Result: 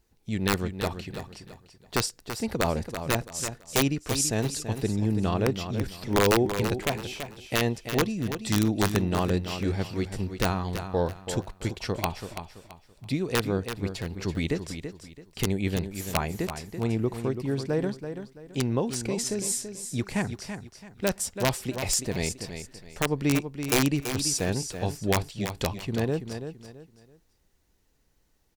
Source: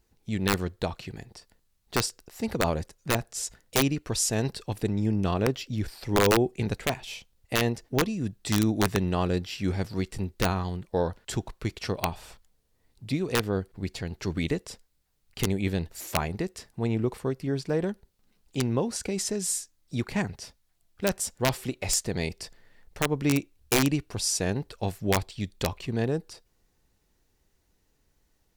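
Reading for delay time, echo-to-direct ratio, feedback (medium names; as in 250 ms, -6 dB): 333 ms, -8.5 dB, 30%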